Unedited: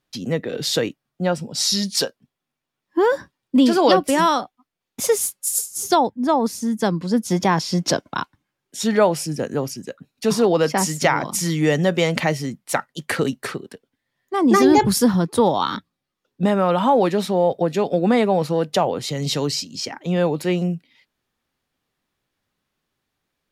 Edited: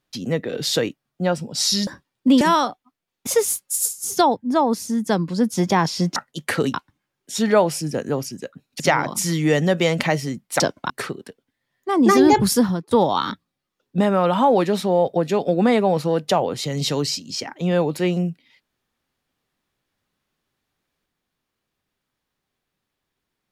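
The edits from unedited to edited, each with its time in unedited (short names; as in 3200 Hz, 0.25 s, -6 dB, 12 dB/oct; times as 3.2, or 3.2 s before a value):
1.87–3.15 cut
3.69–4.14 cut
7.89–8.19 swap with 12.77–13.35
10.25–10.97 cut
14.92–15.36 fade out equal-power, to -24 dB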